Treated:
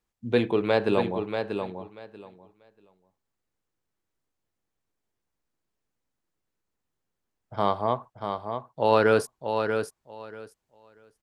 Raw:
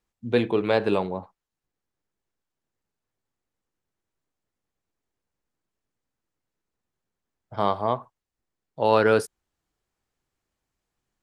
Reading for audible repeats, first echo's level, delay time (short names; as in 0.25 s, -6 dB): 2, -6.5 dB, 0.637 s